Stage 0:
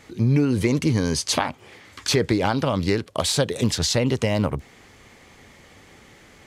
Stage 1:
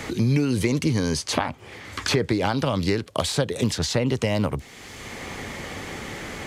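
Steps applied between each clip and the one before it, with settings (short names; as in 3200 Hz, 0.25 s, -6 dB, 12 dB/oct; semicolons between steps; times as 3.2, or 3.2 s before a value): three-band squash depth 70%; gain -1.5 dB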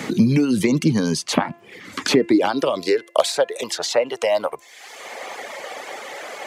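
reverb removal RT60 0.96 s; de-hum 342.6 Hz, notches 8; high-pass sweep 190 Hz -> 610 Hz, 1.78–3.29; gain +3 dB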